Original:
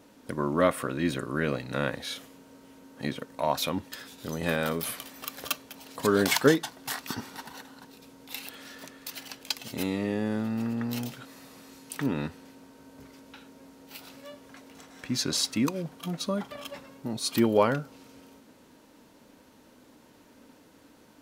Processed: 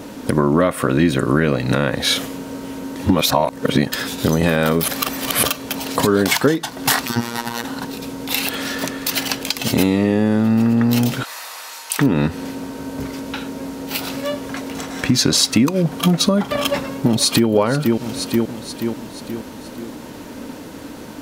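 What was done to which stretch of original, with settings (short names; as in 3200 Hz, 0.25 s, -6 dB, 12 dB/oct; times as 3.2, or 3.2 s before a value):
2.96–3.92 reverse
4.88–5.43 reverse
7.06–7.64 robotiser 118 Hz
11.23–11.99 HPF 770 Hz 24 dB/oct
16.57–17.49 echo throw 0.48 s, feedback 50%, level -10 dB
whole clip: low shelf 490 Hz +4 dB; compressor 12:1, threshold -31 dBFS; maximiser +22 dB; gain -2 dB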